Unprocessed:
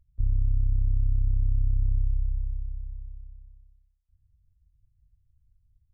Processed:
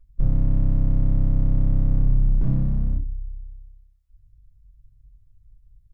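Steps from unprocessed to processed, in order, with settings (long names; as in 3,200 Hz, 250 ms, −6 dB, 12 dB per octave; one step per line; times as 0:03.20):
0:02.41–0:02.98: parametric band 110 Hz +15 dB 2.1 octaves
wave folding −23.5 dBFS
convolution reverb, pre-delay 3 ms, DRR −3 dB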